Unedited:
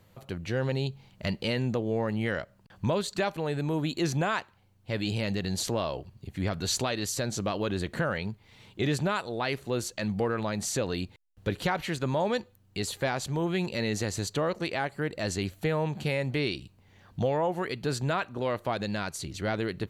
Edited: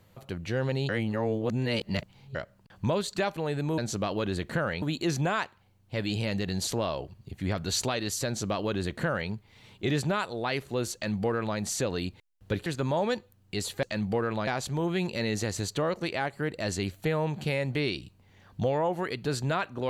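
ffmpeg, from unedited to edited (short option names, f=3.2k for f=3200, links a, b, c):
-filter_complex "[0:a]asplit=8[a][b][c][d][e][f][g][h];[a]atrim=end=0.892[i];[b]atrim=start=0.888:end=2.352,asetpts=PTS-STARTPTS,areverse[j];[c]atrim=start=2.348:end=3.782[k];[d]atrim=start=7.218:end=8.262[l];[e]atrim=start=3.778:end=11.622[m];[f]atrim=start=11.888:end=13.062[n];[g]atrim=start=9.898:end=10.542[o];[h]atrim=start=13.058[p];[i][j]acrossfade=d=0.004:c1=hsin:c2=hsin[q];[q][k]acrossfade=d=0.004:c1=hsin:c2=hsin[r];[r][l]acrossfade=d=0.004:c1=hsin:c2=hsin[s];[s][m]acrossfade=d=0.004:c1=hsin:c2=hsin[t];[t][n]acrossfade=d=0.004:c1=hsin:c2=hsin[u];[u][o]acrossfade=d=0.004:c1=hsin:c2=hsin[v];[v][p]acrossfade=d=0.004:c1=hsin:c2=hsin"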